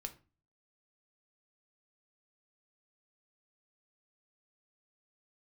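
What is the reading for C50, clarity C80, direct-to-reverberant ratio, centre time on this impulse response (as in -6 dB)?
15.5 dB, 21.0 dB, 6.0 dB, 6 ms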